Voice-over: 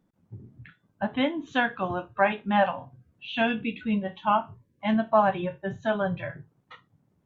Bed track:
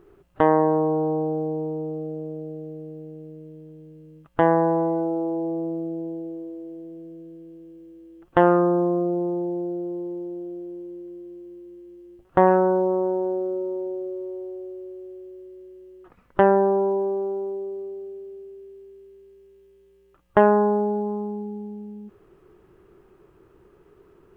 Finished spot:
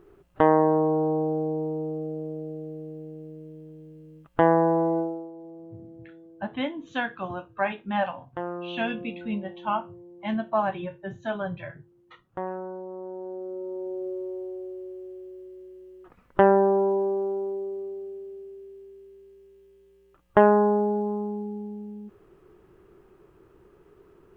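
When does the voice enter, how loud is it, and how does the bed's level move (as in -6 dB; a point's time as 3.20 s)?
5.40 s, -4.0 dB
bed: 4.99 s -1 dB
5.32 s -16.5 dB
12.86 s -16.5 dB
14.08 s -1 dB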